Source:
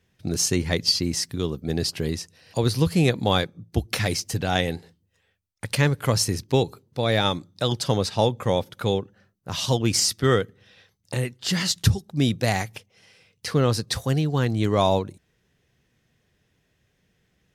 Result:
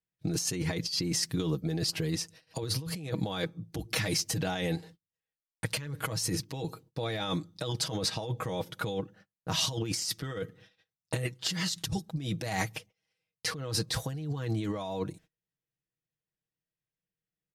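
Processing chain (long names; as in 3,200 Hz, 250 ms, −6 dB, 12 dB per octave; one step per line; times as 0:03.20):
noise gate −50 dBFS, range −28 dB
comb filter 6.3 ms, depth 68%
compressor whose output falls as the input rises −26 dBFS, ratio −1
level −6.5 dB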